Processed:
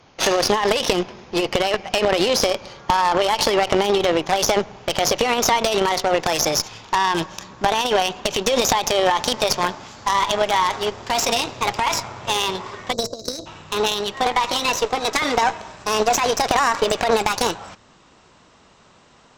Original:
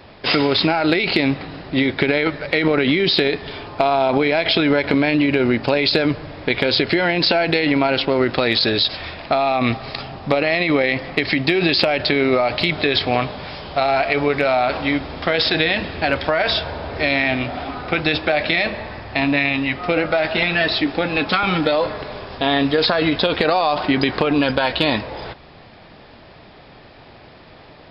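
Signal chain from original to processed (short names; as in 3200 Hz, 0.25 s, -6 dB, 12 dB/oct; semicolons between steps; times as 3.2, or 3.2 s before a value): speed glide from 129% -> 159%; spectral delete 12.93–13.46, 700–3800 Hz; added harmonics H 2 -6 dB, 5 -25 dB, 7 -19 dB, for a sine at -4 dBFS; dynamic EQ 690 Hz, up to +4 dB, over -33 dBFS, Q 0.84; gain -2.5 dB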